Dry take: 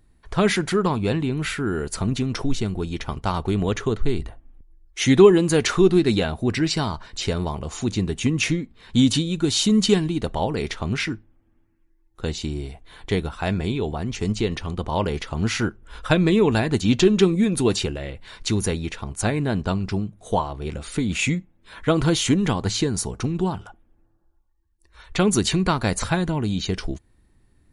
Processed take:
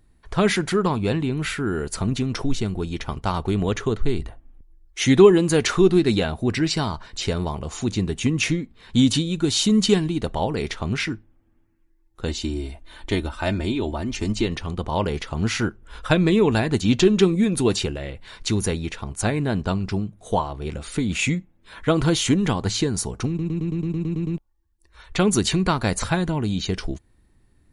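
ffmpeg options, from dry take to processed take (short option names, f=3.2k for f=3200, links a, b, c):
-filter_complex "[0:a]asettb=1/sr,asplit=3[a][b][c];[a]atrim=end=12.284[d];[b]atrim=start=12.28:end=14.47,asetpts=PTS-STARTPTS,afade=t=in:d=0.004:c=qsin,afade=t=out:st=2.186:d=0.004:c=qsin,aecho=1:1:3.3:0.64,atrim=end_sample=96579[e];[c]atrim=start=14.466[f];[d][e]acrossfade=d=0.004:c1=hsin:c2=qsin[g];[g][f]acrossfade=d=0.004:c1=qsin:c2=hsin,asplit=11[h][i][j][k][l][m][n][o][p][q][r];[h]atrim=end=23.392[s];[i]atrim=start=23.278:end=23.392[t];[j]atrim=start=23.278:end=23.392[u];[k]atrim=start=23.278:end=23.392[v];[l]atrim=start=23.278:end=23.392[w];[m]atrim=start=23.278:end=23.392[x];[n]atrim=start=23.278:end=23.392[y];[o]atrim=start=23.278:end=23.392[z];[p]atrim=start=23.278:end=23.392[aa];[q]atrim=start=23.278:end=23.392[ab];[r]atrim=start=24.378[ac];[s][t]acrossfade=d=0.004:c1=hsin:c2=hsin[ad];[ad][u]acrossfade=d=0.004:c1=hsin:c2=hsin[ae];[ae][v]acrossfade=d=0.004:c1=hsin:c2=hsin[af];[af][w]acrossfade=d=0.004:c1=hsin:c2=hsin[ag];[ag][x]acrossfade=d=0.004:c1=hsin:c2=hsin[ah];[ah][y]acrossfade=d=0.004:c1=hsin:c2=hsin[ai];[ai][z]acrossfade=d=0.004:c1=hsin:c2=hsin[aj];[aj][aa]acrossfade=d=0.004:c1=hsin:c2=hsin[ak];[ak][ab]acrossfade=d=0.004:c1=hsin:c2=hsin[al];[al][ac]acrossfade=d=0.004:c1=hsin:c2=hsin"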